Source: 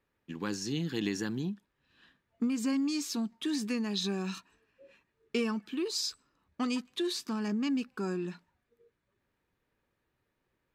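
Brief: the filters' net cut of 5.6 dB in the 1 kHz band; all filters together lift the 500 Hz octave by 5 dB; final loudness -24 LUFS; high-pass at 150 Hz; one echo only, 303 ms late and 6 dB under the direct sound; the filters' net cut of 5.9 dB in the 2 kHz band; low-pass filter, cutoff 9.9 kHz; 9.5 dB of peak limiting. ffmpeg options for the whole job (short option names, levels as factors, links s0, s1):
-af "highpass=150,lowpass=9900,equalizer=f=500:t=o:g=8.5,equalizer=f=1000:t=o:g=-8.5,equalizer=f=2000:t=o:g=-6,alimiter=level_in=1.19:limit=0.0631:level=0:latency=1,volume=0.841,aecho=1:1:303:0.501,volume=3.16"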